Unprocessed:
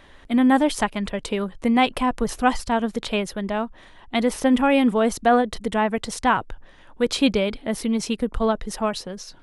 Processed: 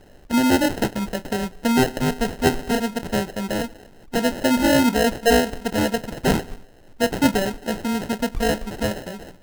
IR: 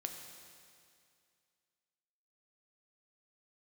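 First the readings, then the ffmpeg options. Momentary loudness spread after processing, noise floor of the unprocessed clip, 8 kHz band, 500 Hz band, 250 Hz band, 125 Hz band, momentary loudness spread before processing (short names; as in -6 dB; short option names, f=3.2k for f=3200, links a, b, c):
9 LU, -49 dBFS, +3.5 dB, +1.0 dB, 0.0 dB, +7.0 dB, 9 LU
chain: -filter_complex "[0:a]asplit=2[a][b];[1:a]atrim=start_sample=2205,afade=t=out:st=0.3:d=0.01,atrim=end_sample=13671,adelay=29[c];[b][c]afir=irnorm=-1:irlink=0,volume=-10.5dB[d];[a][d]amix=inputs=2:normalize=0,acrusher=samples=38:mix=1:aa=0.000001"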